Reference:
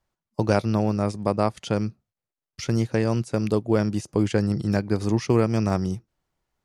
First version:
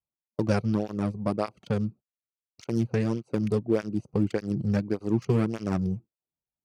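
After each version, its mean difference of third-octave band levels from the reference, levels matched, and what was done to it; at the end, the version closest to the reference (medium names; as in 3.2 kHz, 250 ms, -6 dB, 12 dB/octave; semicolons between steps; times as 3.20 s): 4.5 dB: local Wiener filter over 25 samples; gate -41 dBFS, range -15 dB; dynamic bell 820 Hz, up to -5 dB, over -34 dBFS, Q 1.1; cancelling through-zero flanger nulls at 1.7 Hz, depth 3.6 ms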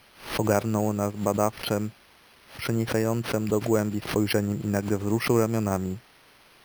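7.0 dB: tone controls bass -4 dB, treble -14 dB; added noise white -47 dBFS; careless resampling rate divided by 6×, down filtered, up hold; swell ahead of each attack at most 130 dB/s; trim -1 dB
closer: first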